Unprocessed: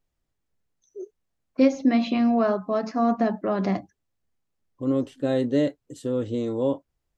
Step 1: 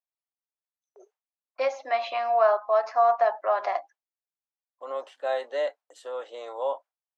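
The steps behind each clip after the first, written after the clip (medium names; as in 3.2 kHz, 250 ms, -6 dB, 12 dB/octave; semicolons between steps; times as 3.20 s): gate with hold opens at -42 dBFS; steep high-pass 690 Hz 36 dB/octave; tilt EQ -4.5 dB/octave; trim +6 dB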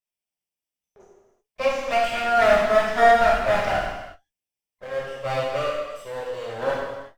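comb filter that takes the minimum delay 0.37 ms; gated-style reverb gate 400 ms falling, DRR -5 dB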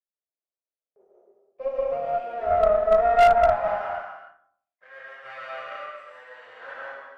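band-pass sweep 490 Hz -> 1.7 kHz, 2.73–4.40 s; algorithmic reverb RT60 0.64 s, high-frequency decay 0.4×, pre-delay 100 ms, DRR -3 dB; Chebyshev shaper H 2 -12 dB, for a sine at -6 dBFS; trim -5.5 dB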